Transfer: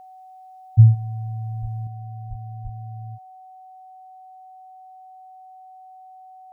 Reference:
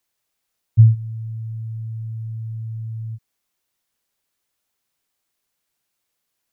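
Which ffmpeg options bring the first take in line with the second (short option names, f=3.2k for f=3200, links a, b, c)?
-filter_complex "[0:a]bandreject=f=750:w=30,asplit=3[a][b][c];[a]afade=t=out:st=1.61:d=0.02[d];[b]highpass=f=140:w=0.5412,highpass=f=140:w=1.3066,afade=t=in:st=1.61:d=0.02,afade=t=out:st=1.73:d=0.02[e];[c]afade=t=in:st=1.73:d=0.02[f];[d][e][f]amix=inputs=3:normalize=0,asplit=3[g][h][i];[g]afade=t=out:st=2.29:d=0.02[j];[h]highpass=f=140:w=0.5412,highpass=f=140:w=1.3066,afade=t=in:st=2.29:d=0.02,afade=t=out:st=2.41:d=0.02[k];[i]afade=t=in:st=2.41:d=0.02[l];[j][k][l]amix=inputs=3:normalize=0,asplit=3[m][n][o];[m]afade=t=out:st=2.63:d=0.02[p];[n]highpass=f=140:w=0.5412,highpass=f=140:w=1.3066,afade=t=in:st=2.63:d=0.02,afade=t=out:st=2.75:d=0.02[q];[o]afade=t=in:st=2.75:d=0.02[r];[p][q][r]amix=inputs=3:normalize=0,asetnsamples=n=441:p=0,asendcmd='1.87 volume volume 6dB',volume=0dB"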